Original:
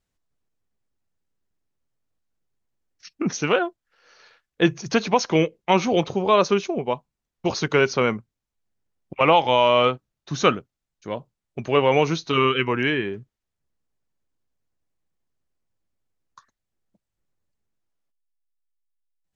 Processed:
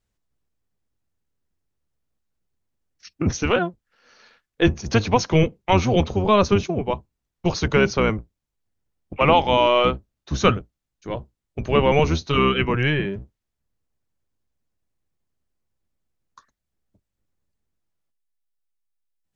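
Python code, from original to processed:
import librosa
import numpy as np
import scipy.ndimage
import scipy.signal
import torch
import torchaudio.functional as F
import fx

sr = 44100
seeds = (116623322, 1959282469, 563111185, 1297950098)

y = fx.octave_divider(x, sr, octaves=1, level_db=2.0)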